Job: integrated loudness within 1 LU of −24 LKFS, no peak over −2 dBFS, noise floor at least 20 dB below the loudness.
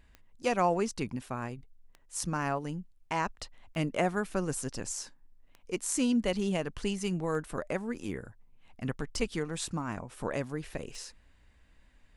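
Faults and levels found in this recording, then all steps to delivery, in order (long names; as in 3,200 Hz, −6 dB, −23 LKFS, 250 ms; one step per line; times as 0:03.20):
number of clicks 7; integrated loudness −33.5 LKFS; sample peak −14.5 dBFS; target loudness −24.0 LKFS
→ click removal
level +9.5 dB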